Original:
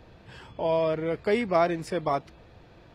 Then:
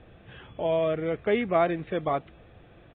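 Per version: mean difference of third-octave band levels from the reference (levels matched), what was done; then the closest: 2.0 dB: notch 940 Hz, Q 6.9; downsampling 8000 Hz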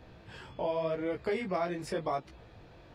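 3.0 dB: compressor 3:1, threshold -29 dBFS, peak gain reduction 8.5 dB; chorus 0.89 Hz, delay 15.5 ms, depth 7 ms; gain +1.5 dB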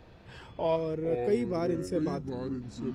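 5.5 dB: spectral gain 0.76–2.62, 540–5100 Hz -12 dB; echoes that change speed 0.257 s, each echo -5 st, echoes 3, each echo -6 dB; gain -2 dB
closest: first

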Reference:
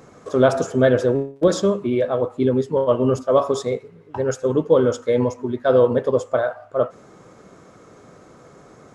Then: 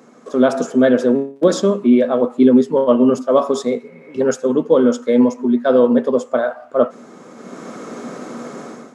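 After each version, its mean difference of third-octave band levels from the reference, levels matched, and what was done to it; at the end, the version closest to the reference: 3.5 dB: spectral repair 3.86–4.18, 510–2600 Hz before; HPF 180 Hz 24 dB/oct; bell 240 Hz +12 dB 0.2 oct; AGC gain up to 16 dB; gain -1 dB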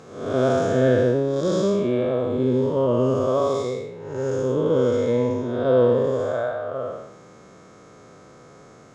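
5.5 dB: time blur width 0.289 s; air absorption 58 m; harmonic-percussive split harmonic +7 dB; high shelf 3300 Hz +8 dB; gain -4 dB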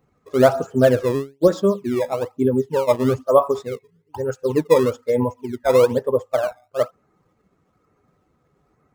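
7.5 dB: per-bin expansion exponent 1.5; high shelf 3600 Hz -10.5 dB; in parallel at -8 dB: decimation with a swept rate 17×, swing 160% 1.1 Hz; on the sum: dynamic EQ 890 Hz, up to +5 dB, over -28 dBFS, Q 0.88; gain -1.5 dB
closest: first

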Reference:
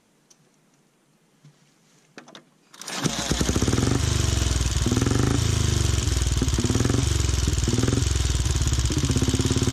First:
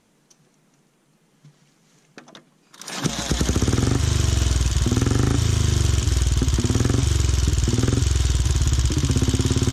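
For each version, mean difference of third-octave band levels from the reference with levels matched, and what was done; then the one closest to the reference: 1.5 dB: low shelf 110 Hz +5.5 dB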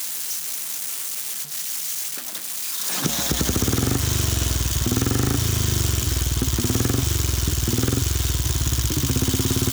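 6.5 dB: switching spikes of -19 dBFS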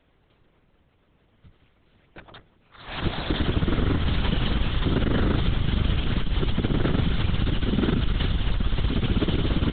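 9.0 dB: LPC vocoder at 8 kHz whisper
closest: first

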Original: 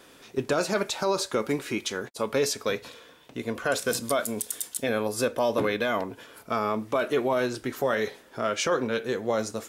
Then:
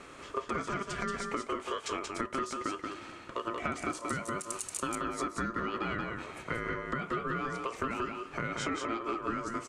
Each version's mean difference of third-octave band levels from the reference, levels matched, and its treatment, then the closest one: 9.5 dB: EQ curve 260 Hz 0 dB, 410 Hz +6 dB, 2300 Hz +2 dB, 3800 Hz -7 dB, 8000 Hz +1 dB, 14000 Hz -27 dB; compressor 10:1, threshold -33 dBFS, peak gain reduction 18 dB; ring modulator 800 Hz; echo 0.181 s -4 dB; gain +3.5 dB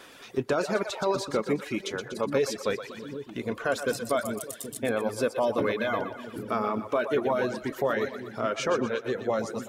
5.0 dB: split-band echo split 370 Hz, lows 0.776 s, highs 0.121 s, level -6 dB; reverb removal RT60 0.78 s; high shelf 3600 Hz -9.5 dB; mismatched tape noise reduction encoder only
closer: second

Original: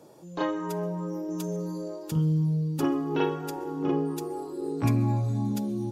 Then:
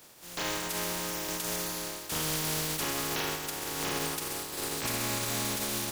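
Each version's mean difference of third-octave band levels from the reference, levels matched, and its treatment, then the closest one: 18.0 dB: spectral contrast lowered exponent 0.25; de-hum 54 Hz, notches 28; limiter -20.5 dBFS, peak gain reduction 10 dB; gain -1.5 dB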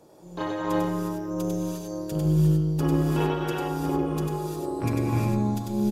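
7.0 dB: on a send: echo 97 ms -3 dB; on the sum: non-linear reverb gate 0.38 s rising, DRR -2 dB; AM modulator 210 Hz, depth 35%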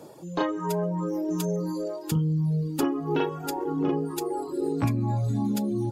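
3.5 dB: reverb removal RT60 0.78 s; notch 5800 Hz, Q 14; compressor 5:1, threshold -29 dBFS, peak gain reduction 8.5 dB; gain +7 dB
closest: third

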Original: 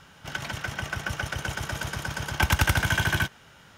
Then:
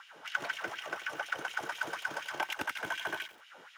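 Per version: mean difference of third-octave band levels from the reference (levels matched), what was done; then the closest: 8.5 dB: high shelf 2600 Hz -8.5 dB; compressor 3:1, threshold -35 dBFS, peak gain reduction 13 dB; LFO high-pass sine 4.1 Hz 330–2900 Hz; lo-fi delay 89 ms, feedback 35%, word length 8-bit, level -14.5 dB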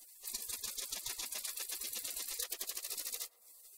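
15.5 dB: spectral gate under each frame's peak -30 dB weak; low shelf 180 Hz +7 dB; compressor 12:1, threshold -54 dBFS, peak gain reduction 20.5 dB; on a send: narrowing echo 0.113 s, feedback 78%, band-pass 720 Hz, level -17 dB; on the sum: gain +16.5 dB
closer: first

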